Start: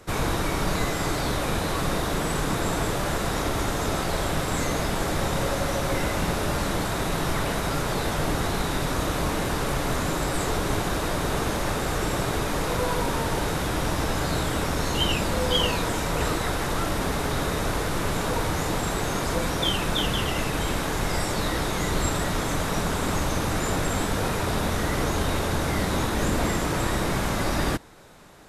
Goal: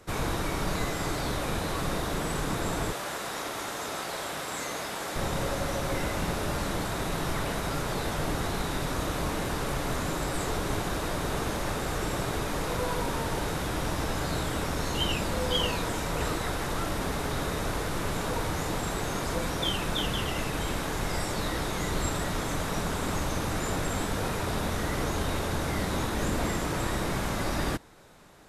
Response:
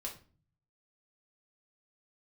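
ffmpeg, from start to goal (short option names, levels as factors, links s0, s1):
-filter_complex "[0:a]asettb=1/sr,asplit=3[s0][s1][s2];[s0]atrim=end=2.924[s3];[s1]atrim=start=2.92:end=5.16,asetpts=PTS-STARTPTS,afade=t=in:d=0.004:c=qsin,afade=t=out:st=2.236:d=0.004:c=qsin,highpass=f=610:p=1[s4];[s2]atrim=start=5.156[s5];[s3][s4]acrossfade=d=0.004:c1=hsin:c2=qsin[s6];[s6][s5]acrossfade=d=0.004:c1=qsin:c2=hsin,volume=0.596"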